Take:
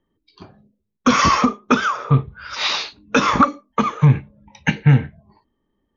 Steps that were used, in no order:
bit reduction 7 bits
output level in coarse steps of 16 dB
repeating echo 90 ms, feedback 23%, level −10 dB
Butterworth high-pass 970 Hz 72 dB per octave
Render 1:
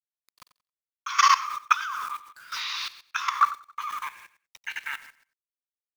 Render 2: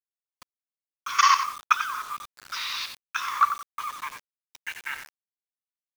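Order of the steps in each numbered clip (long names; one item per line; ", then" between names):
Butterworth high-pass, then bit reduction, then repeating echo, then output level in coarse steps
Butterworth high-pass, then output level in coarse steps, then repeating echo, then bit reduction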